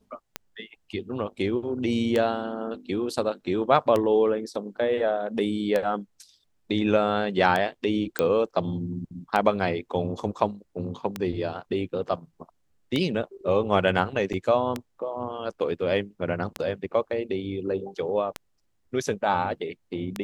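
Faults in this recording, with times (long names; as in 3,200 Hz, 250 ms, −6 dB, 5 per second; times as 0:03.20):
scratch tick 33 1/3 rpm −12 dBFS
0:08.19: click −9 dBFS
0:14.33–0:14.34: drop-out 6.6 ms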